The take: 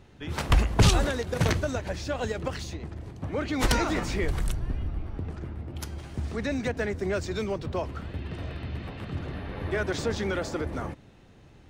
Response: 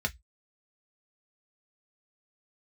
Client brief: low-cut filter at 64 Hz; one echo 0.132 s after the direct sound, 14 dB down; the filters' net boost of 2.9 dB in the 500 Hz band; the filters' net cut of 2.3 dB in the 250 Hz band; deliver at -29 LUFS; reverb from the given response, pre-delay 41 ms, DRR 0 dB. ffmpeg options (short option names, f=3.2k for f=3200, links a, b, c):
-filter_complex "[0:a]highpass=64,equalizer=f=250:t=o:g=-5,equalizer=f=500:t=o:g=5,aecho=1:1:132:0.2,asplit=2[a][b];[1:a]atrim=start_sample=2205,adelay=41[c];[b][c]afir=irnorm=-1:irlink=0,volume=-6.5dB[d];[a][d]amix=inputs=2:normalize=0,volume=-4dB"